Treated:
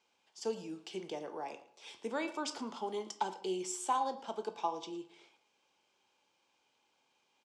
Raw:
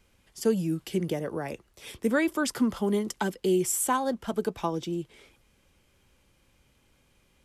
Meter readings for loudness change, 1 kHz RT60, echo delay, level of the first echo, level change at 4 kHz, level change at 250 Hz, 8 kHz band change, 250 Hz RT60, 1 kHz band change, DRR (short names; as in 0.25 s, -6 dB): -10.5 dB, 0.60 s, 0.113 s, -18.5 dB, -5.5 dB, -15.5 dB, -11.5 dB, 0.55 s, -3.0 dB, 8.5 dB